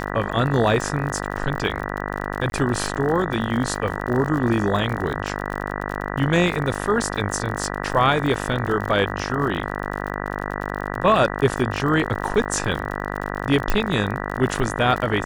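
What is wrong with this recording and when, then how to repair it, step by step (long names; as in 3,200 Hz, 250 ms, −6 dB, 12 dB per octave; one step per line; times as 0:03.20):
mains buzz 50 Hz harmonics 39 −28 dBFS
surface crackle 51 per second −28 dBFS
0:02.50–0:02.52: drop-out 21 ms
0:13.70: click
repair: click removal
hum removal 50 Hz, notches 39
repair the gap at 0:02.50, 21 ms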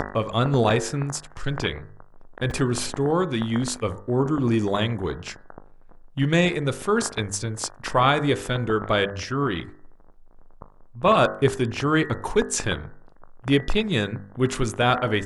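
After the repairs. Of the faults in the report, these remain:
none of them is left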